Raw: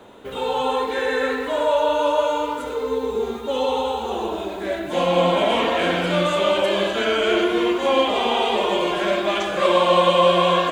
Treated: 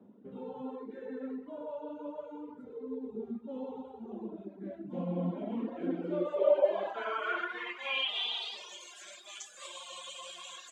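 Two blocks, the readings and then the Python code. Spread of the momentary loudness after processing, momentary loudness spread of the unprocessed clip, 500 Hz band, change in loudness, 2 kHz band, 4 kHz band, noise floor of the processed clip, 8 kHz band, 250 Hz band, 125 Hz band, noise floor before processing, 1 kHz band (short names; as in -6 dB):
15 LU, 10 LU, -16.0 dB, -16.0 dB, -15.5 dB, -14.0 dB, -53 dBFS, under -10 dB, -13.0 dB, -12.5 dB, -30 dBFS, -22.0 dB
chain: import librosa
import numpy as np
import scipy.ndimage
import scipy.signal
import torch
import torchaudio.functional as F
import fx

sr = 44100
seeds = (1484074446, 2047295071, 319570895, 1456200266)

y = scipy.signal.sosfilt(scipy.signal.butter(2, 97.0, 'highpass', fs=sr, output='sos'), x)
y = fx.dereverb_blind(y, sr, rt60_s=1.5)
y = fx.filter_sweep_bandpass(y, sr, from_hz=210.0, to_hz=7100.0, start_s=5.65, end_s=8.89, q=3.9)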